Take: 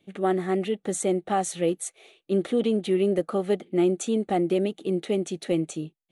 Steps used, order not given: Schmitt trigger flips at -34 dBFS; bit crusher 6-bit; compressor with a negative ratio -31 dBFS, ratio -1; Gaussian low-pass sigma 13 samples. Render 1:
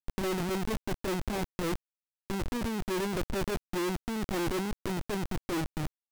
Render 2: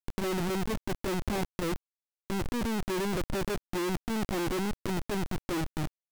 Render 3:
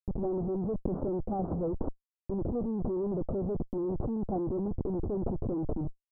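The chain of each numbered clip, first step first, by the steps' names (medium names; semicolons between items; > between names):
Gaussian low-pass > Schmitt trigger > bit crusher > compressor with a negative ratio; Gaussian low-pass > Schmitt trigger > compressor with a negative ratio > bit crusher; bit crusher > Schmitt trigger > Gaussian low-pass > compressor with a negative ratio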